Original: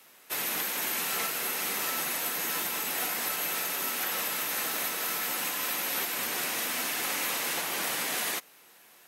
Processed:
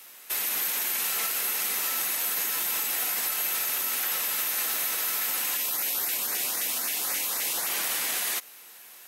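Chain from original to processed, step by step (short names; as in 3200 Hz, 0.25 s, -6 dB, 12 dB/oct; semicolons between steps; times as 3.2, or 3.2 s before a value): tilt +2 dB/oct; limiter -22 dBFS, peak gain reduction 8 dB; 5.56–7.69 LFO notch saw up 3.8 Hz 960–3500 Hz; gain +3 dB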